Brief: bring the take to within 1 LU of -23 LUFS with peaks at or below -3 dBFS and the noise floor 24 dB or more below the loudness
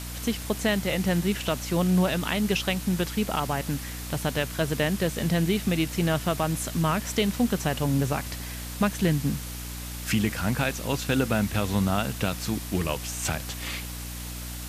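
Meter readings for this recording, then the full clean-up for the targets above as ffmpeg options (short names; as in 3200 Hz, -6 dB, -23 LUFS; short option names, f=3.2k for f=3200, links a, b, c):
hum 60 Hz; harmonics up to 300 Hz; hum level -34 dBFS; noise floor -36 dBFS; noise floor target -51 dBFS; loudness -27.0 LUFS; peak -9.5 dBFS; loudness target -23.0 LUFS
-> -af "bandreject=f=60:t=h:w=4,bandreject=f=120:t=h:w=4,bandreject=f=180:t=h:w=4,bandreject=f=240:t=h:w=4,bandreject=f=300:t=h:w=4"
-af "afftdn=nr=15:nf=-36"
-af "volume=4dB"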